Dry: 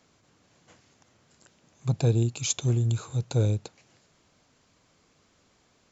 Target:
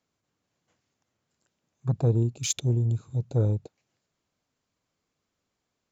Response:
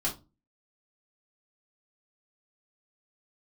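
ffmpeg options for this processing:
-af "afwtdn=0.0112"

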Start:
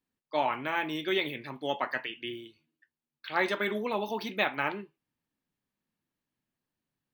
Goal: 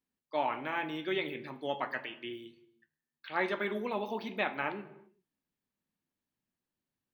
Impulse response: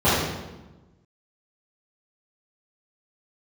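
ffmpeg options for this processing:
-filter_complex "[0:a]acrossover=split=3700[link_01][link_02];[link_02]acompressor=threshold=-55dB:ratio=4:attack=1:release=60[link_03];[link_01][link_03]amix=inputs=2:normalize=0,asplit=2[link_04][link_05];[1:a]atrim=start_sample=2205,afade=type=out:start_time=0.43:duration=0.01,atrim=end_sample=19404[link_06];[link_05][link_06]afir=irnorm=-1:irlink=0,volume=-35dB[link_07];[link_04][link_07]amix=inputs=2:normalize=0,volume=-4dB"

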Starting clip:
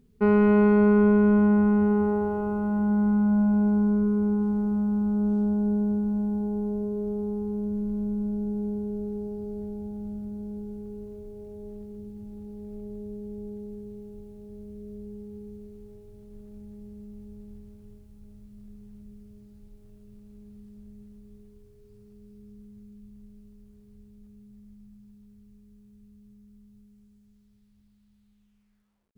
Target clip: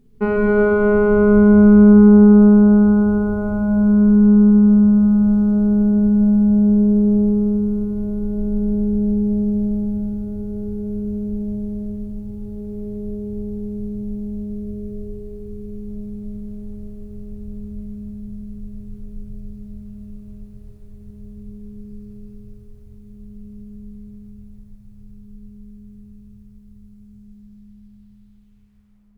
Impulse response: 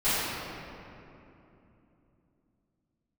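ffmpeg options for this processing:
-filter_complex "[0:a]aecho=1:1:150|270|366|442.8|504.2:0.631|0.398|0.251|0.158|0.1,asplit=2[link_01][link_02];[1:a]atrim=start_sample=2205,lowpass=2300,lowshelf=frequency=250:gain=9[link_03];[link_02][link_03]afir=irnorm=-1:irlink=0,volume=-16.5dB[link_04];[link_01][link_04]amix=inputs=2:normalize=0,volume=2dB"

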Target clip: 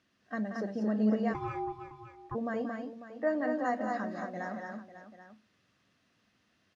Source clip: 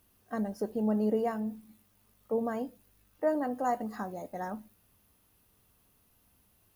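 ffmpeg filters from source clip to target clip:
ffmpeg -i in.wav -filter_complex "[0:a]highpass=170,equalizer=frequency=430:width_type=q:width=4:gain=-7,equalizer=frequency=870:width_type=q:width=4:gain=-9,equalizer=frequency=1800:width_type=q:width=4:gain=7,lowpass=frequency=5800:width=0.5412,lowpass=frequency=5800:width=1.3066,aecho=1:1:180|226|547|787:0.335|0.668|0.224|0.178,asplit=3[link_01][link_02][link_03];[link_01]afade=type=out:start_time=1.33:duration=0.02[link_04];[link_02]aeval=exprs='val(0)*sin(2*PI*580*n/s)':channel_layout=same,afade=type=in:start_time=1.33:duration=0.02,afade=type=out:start_time=2.34:duration=0.02[link_05];[link_03]afade=type=in:start_time=2.34:duration=0.02[link_06];[link_04][link_05][link_06]amix=inputs=3:normalize=0" out.wav

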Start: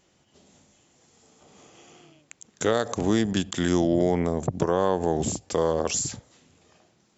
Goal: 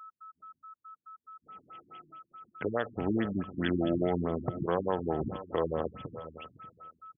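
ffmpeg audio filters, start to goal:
ffmpeg -i in.wav -filter_complex "[0:a]asplit=2[link_01][link_02];[link_02]adelay=591,lowpass=frequency=2000:poles=1,volume=-19.5dB,asplit=2[link_03][link_04];[link_04]adelay=591,lowpass=frequency=2000:poles=1,volume=0.2[link_05];[link_03][link_05]amix=inputs=2:normalize=0[link_06];[link_01][link_06]amix=inputs=2:normalize=0,agate=range=-27dB:threshold=-54dB:ratio=16:detection=peak,asplit=2[link_07][link_08];[link_08]aecho=0:1:504:0.178[link_09];[link_07][link_09]amix=inputs=2:normalize=0,aeval=exprs='val(0)+0.00794*sin(2*PI*1300*n/s)':channel_layout=same,crystalizer=i=6.5:c=0,afftfilt=real='re*lt(b*sr/1024,320*pow(3500/320,0.5+0.5*sin(2*PI*4.7*pts/sr)))':imag='im*lt(b*sr/1024,320*pow(3500/320,0.5+0.5*sin(2*PI*4.7*pts/sr)))':win_size=1024:overlap=0.75,volume=-7dB" out.wav

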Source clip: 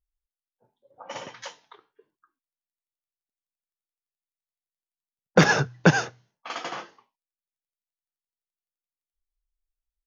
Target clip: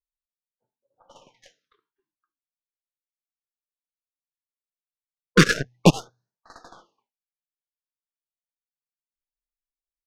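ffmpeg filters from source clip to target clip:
ffmpeg -i in.wav -af "aeval=exprs='0.631*(cos(1*acos(clip(val(0)/0.631,-1,1)))-cos(1*PI/2))+0.0794*(cos(7*acos(clip(val(0)/0.631,-1,1)))-cos(7*PI/2))+0.0178*(cos(8*acos(clip(val(0)/0.631,-1,1)))-cos(8*PI/2))':channel_layout=same,afftfilt=real='re*(1-between(b*sr/1024,540*pow(2800/540,0.5+0.5*sin(2*PI*0.35*pts/sr))/1.41,540*pow(2800/540,0.5+0.5*sin(2*PI*0.35*pts/sr))*1.41))':imag='im*(1-between(b*sr/1024,540*pow(2800/540,0.5+0.5*sin(2*PI*0.35*pts/sr))/1.41,540*pow(2800/540,0.5+0.5*sin(2*PI*0.35*pts/sr))*1.41))':win_size=1024:overlap=0.75,volume=3dB" out.wav

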